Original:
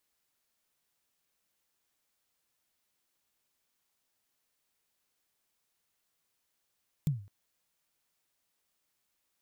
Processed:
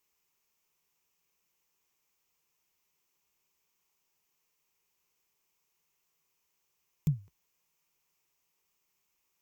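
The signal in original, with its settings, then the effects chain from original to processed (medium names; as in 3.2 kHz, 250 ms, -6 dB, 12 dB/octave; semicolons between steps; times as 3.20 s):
kick drum length 0.21 s, from 160 Hz, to 100 Hz, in 136 ms, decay 0.40 s, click on, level -22 dB
rippled EQ curve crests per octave 0.76, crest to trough 8 dB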